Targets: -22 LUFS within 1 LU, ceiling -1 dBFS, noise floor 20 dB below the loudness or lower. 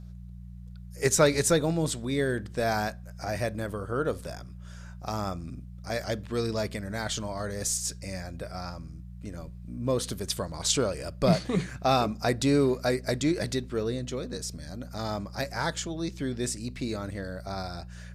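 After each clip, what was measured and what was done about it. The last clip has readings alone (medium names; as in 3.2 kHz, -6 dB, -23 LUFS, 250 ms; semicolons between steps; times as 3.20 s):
hum 60 Hz; highest harmonic 180 Hz; hum level -40 dBFS; loudness -29.5 LUFS; peak level -9.5 dBFS; loudness target -22.0 LUFS
-> de-hum 60 Hz, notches 3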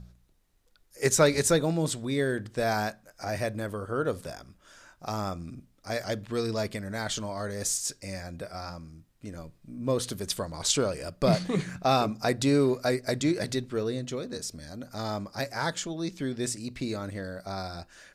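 hum not found; loudness -29.5 LUFS; peak level -10.0 dBFS; loudness target -22.0 LUFS
-> trim +7.5 dB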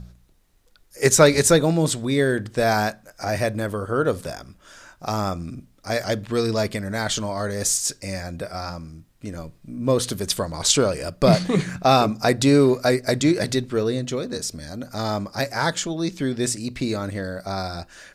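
loudness -22.0 LUFS; peak level -2.5 dBFS; noise floor -57 dBFS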